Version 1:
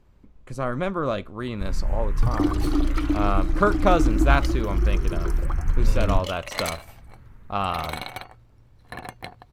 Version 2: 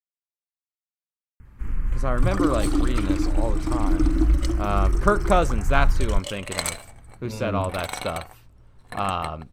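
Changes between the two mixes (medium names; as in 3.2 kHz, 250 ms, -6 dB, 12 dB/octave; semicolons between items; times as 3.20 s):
speech: entry +1.45 s; second sound: add peaking EQ 8.2 kHz +14.5 dB 0.29 oct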